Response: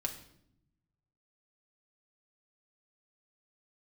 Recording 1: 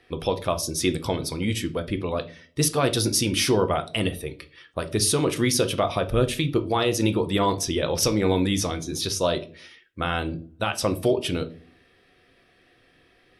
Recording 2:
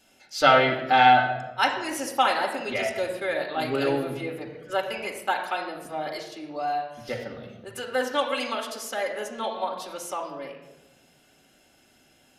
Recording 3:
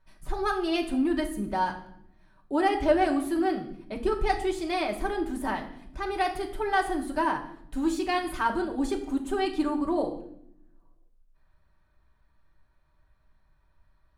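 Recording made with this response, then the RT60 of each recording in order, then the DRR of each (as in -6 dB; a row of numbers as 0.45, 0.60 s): 3; 0.45, 1.1, 0.70 s; 8.5, -1.0, 0.5 dB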